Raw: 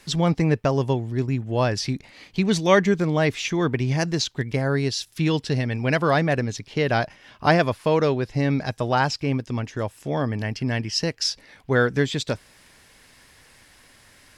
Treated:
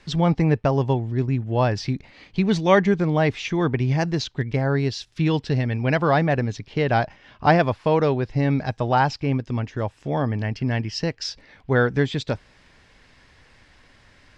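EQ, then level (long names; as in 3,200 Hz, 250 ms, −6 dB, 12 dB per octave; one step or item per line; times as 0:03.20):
low-shelf EQ 94 Hz +6.5 dB
dynamic equaliser 820 Hz, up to +5 dB, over −38 dBFS, Q 3.7
high-frequency loss of the air 120 metres
0.0 dB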